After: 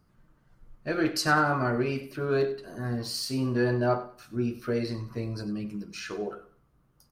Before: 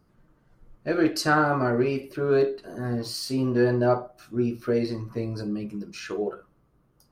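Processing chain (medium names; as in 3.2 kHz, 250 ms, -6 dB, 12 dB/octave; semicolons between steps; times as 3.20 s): peaking EQ 410 Hz -5.5 dB 1.9 oct; on a send: feedback delay 95 ms, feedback 29%, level -15 dB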